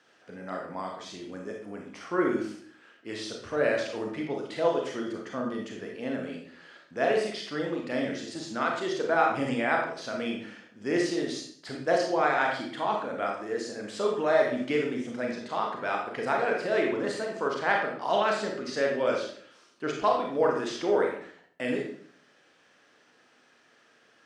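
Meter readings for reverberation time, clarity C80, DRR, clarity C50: 0.55 s, 8.0 dB, 0.0 dB, 3.5 dB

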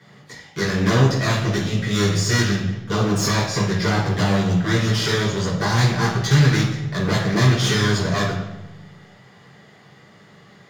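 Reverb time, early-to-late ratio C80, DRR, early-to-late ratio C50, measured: 1.1 s, 7.0 dB, -7.0 dB, 3.5 dB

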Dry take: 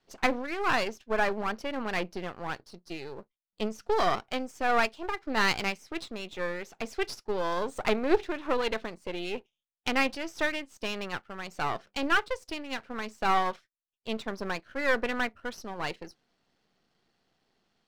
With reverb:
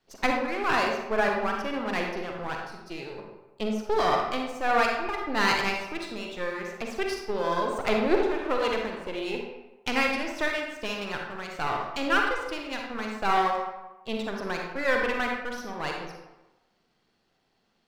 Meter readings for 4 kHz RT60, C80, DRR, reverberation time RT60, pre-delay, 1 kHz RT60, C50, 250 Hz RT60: 0.65 s, 4.5 dB, 0.5 dB, 1.0 s, 39 ms, 1.1 s, 1.5 dB, 0.95 s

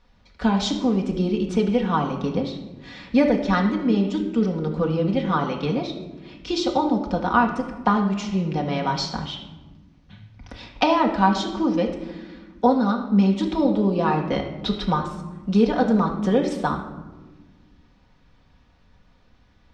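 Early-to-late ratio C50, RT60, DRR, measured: 7.5 dB, 1.3 s, 0.5 dB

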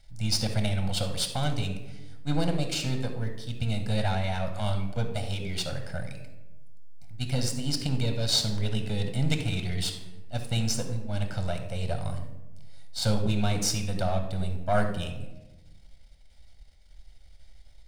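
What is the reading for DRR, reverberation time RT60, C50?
6.0 dB, 1.1 s, 7.0 dB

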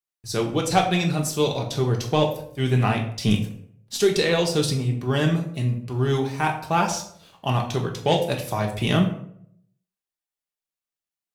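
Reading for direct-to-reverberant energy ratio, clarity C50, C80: 0.5 dB, 9.0 dB, 12.0 dB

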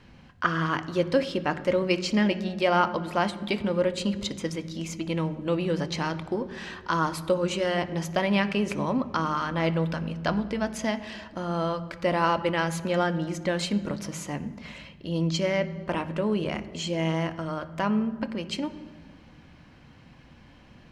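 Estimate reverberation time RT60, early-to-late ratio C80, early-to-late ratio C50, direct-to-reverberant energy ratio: 1.7 s, 15.5 dB, 14.5 dB, 10.0 dB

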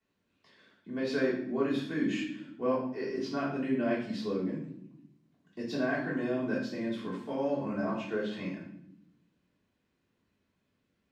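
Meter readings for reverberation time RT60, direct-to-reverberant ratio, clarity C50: no single decay rate, -11.5 dB, 4.0 dB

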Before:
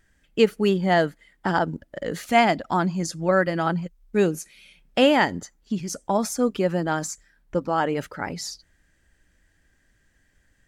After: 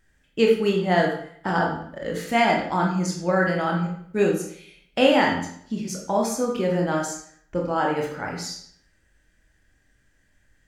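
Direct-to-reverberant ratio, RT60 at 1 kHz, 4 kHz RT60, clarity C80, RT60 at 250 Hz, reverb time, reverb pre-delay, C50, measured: -1.0 dB, 0.60 s, 0.55 s, 8.0 dB, 0.60 s, 0.60 s, 22 ms, 4.5 dB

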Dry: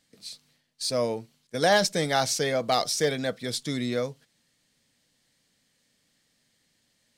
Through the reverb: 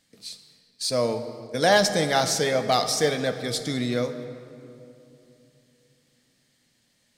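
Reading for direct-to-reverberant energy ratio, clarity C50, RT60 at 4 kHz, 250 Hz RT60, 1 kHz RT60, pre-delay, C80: 8.5 dB, 10.0 dB, 1.6 s, 3.4 s, 2.6 s, 9 ms, 10.5 dB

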